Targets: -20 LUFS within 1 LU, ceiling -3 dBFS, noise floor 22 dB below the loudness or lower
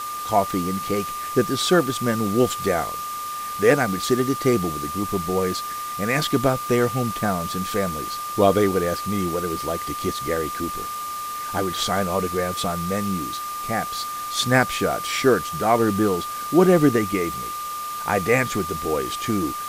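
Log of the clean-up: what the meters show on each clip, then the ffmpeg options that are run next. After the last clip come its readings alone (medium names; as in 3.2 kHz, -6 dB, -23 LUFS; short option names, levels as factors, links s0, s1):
steady tone 1.2 kHz; tone level -28 dBFS; noise floor -30 dBFS; noise floor target -45 dBFS; loudness -22.5 LUFS; peak level -3.0 dBFS; loudness target -20.0 LUFS
-> -af "bandreject=f=1200:w=30"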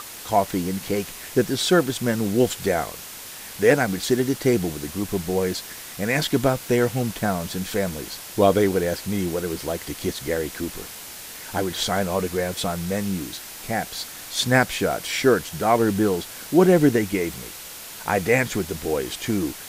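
steady tone not found; noise floor -38 dBFS; noise floor target -45 dBFS
-> -af "afftdn=nr=7:nf=-38"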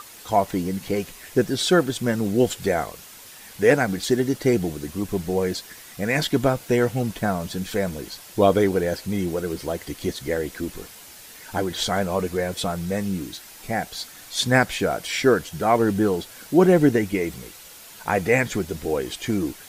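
noise floor -44 dBFS; noise floor target -45 dBFS
-> -af "afftdn=nr=6:nf=-44"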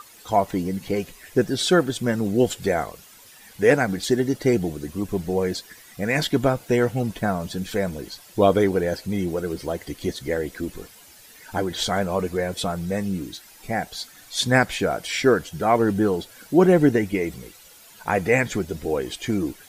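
noise floor -49 dBFS; loudness -23.5 LUFS; peak level -3.5 dBFS; loudness target -20.0 LUFS
-> -af "volume=1.5,alimiter=limit=0.708:level=0:latency=1"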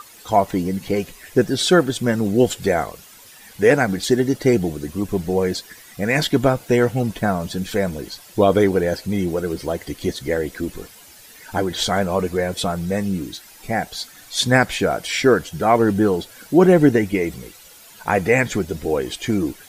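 loudness -20.0 LUFS; peak level -3.0 dBFS; noise floor -45 dBFS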